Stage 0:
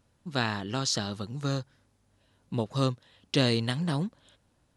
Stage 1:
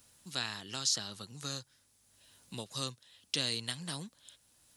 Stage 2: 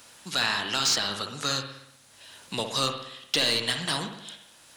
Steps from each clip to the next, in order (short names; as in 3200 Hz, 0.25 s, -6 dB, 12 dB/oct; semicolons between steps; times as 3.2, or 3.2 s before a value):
pre-emphasis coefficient 0.9; three-band squash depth 40%; gain +4.5 dB
overdrive pedal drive 18 dB, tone 3000 Hz, clips at -16.5 dBFS; reverb, pre-delay 59 ms, DRR 5.5 dB; gain +6 dB